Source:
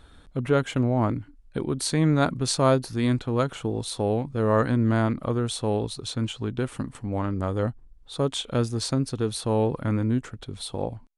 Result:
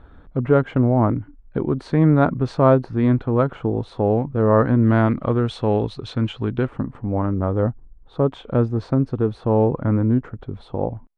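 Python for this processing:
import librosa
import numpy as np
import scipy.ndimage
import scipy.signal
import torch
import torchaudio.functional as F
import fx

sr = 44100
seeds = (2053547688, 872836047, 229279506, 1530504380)

y = fx.lowpass(x, sr, hz=fx.steps((0.0, 1400.0), (4.83, 2400.0), (6.67, 1200.0)), slope=12)
y = F.gain(torch.from_numpy(y), 6.0).numpy()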